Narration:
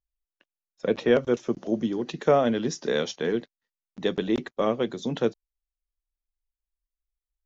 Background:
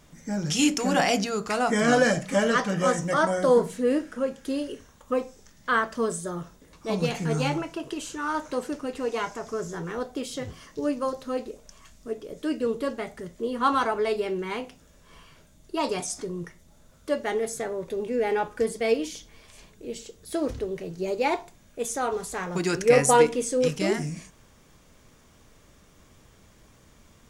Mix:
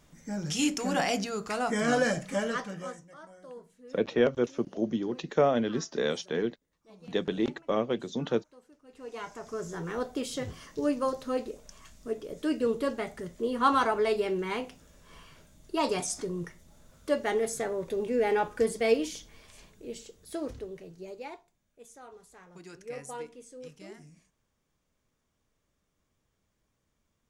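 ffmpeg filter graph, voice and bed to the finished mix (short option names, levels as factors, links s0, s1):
-filter_complex "[0:a]adelay=3100,volume=0.668[s0];[1:a]volume=10.6,afade=t=out:st=2.22:d=0.84:silence=0.0841395,afade=t=in:st=8.84:d=1.2:silence=0.0501187,afade=t=out:st=18.95:d=2.49:silence=0.0891251[s1];[s0][s1]amix=inputs=2:normalize=0"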